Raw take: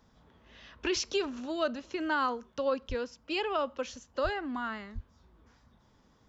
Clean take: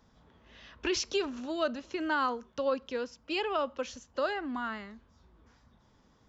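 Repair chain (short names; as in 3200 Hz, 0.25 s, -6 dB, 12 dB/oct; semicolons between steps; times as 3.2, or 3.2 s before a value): de-plosive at 2.88/4.23/4.94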